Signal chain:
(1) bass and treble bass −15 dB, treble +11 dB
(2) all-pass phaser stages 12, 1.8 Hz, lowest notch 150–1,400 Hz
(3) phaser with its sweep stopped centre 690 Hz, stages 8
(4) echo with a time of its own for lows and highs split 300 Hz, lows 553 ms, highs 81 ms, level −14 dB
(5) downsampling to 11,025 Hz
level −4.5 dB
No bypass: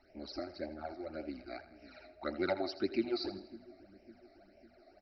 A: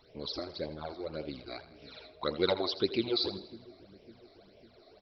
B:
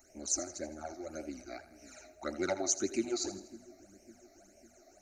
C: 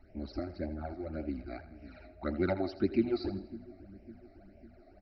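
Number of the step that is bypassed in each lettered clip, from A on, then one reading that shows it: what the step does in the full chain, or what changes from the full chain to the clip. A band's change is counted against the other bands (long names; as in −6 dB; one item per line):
3, change in crest factor +4.0 dB
5, change in crest factor +3.0 dB
1, 125 Hz band +13.0 dB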